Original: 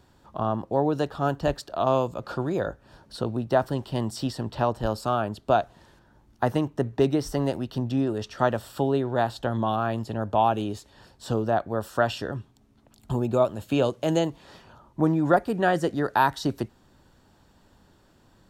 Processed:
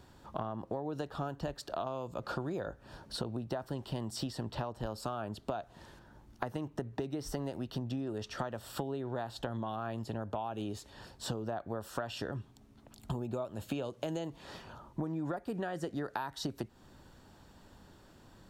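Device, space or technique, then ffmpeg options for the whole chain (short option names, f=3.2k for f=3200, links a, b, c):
serial compression, leveller first: -af "acompressor=threshold=-24dB:ratio=3,acompressor=threshold=-35dB:ratio=6,volume=1dB"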